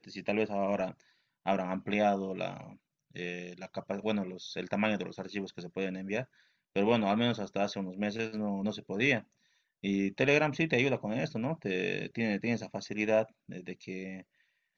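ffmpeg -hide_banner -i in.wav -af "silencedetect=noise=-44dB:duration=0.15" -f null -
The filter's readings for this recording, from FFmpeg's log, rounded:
silence_start: 0.92
silence_end: 1.46 | silence_duration: 0.54
silence_start: 2.73
silence_end: 3.15 | silence_duration: 0.43
silence_start: 6.24
silence_end: 6.76 | silence_duration: 0.52
silence_start: 9.21
silence_end: 9.84 | silence_duration: 0.63
silence_start: 13.25
silence_end: 13.49 | silence_duration: 0.24
silence_start: 14.21
silence_end: 14.77 | silence_duration: 0.56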